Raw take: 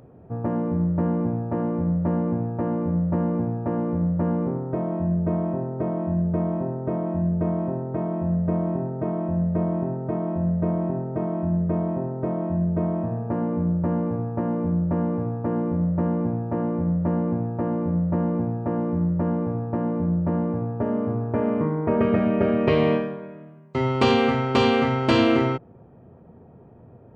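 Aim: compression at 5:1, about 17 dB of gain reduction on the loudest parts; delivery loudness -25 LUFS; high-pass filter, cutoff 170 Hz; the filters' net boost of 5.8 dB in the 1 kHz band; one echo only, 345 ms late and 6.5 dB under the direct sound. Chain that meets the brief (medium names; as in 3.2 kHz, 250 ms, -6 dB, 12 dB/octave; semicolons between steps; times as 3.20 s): high-pass 170 Hz; peaking EQ 1 kHz +7.5 dB; compression 5:1, threshold -33 dBFS; delay 345 ms -6.5 dB; trim +9.5 dB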